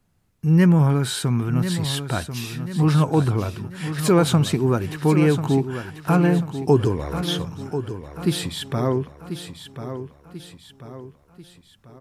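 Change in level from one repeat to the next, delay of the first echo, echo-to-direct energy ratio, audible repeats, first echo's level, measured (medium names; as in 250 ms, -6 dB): -6.5 dB, 1040 ms, -9.0 dB, 4, -10.0 dB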